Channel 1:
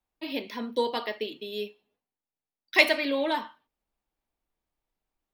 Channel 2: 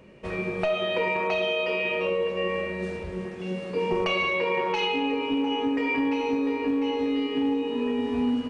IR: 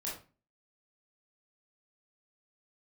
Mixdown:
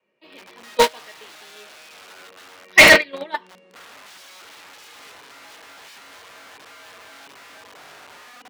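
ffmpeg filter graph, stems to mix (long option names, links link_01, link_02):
-filter_complex "[0:a]adynamicequalizer=threshold=0.01:dfrequency=1900:dqfactor=4.7:tfrequency=1900:tqfactor=4.7:attack=5:release=100:ratio=0.375:range=3.5:mode=boostabove:tftype=bell,volume=1dB[link_01];[1:a]highpass=frequency=170:poles=1,adynamicequalizer=threshold=0.00891:dfrequency=240:dqfactor=1.1:tfrequency=240:tqfactor=1.1:attack=5:release=100:ratio=0.375:range=4:mode=boostabove:tftype=bell,aeval=exprs='(mod(12.6*val(0)+1,2)-1)/12.6':channel_layout=same,volume=-3.5dB[link_02];[link_01][link_02]amix=inputs=2:normalize=0,agate=range=-39dB:threshold=-20dB:ratio=16:detection=peak,acontrast=38,asplit=2[link_03][link_04];[link_04]highpass=frequency=720:poles=1,volume=28dB,asoftclip=type=tanh:threshold=-1dB[link_05];[link_03][link_05]amix=inputs=2:normalize=0,lowpass=frequency=4800:poles=1,volume=-6dB"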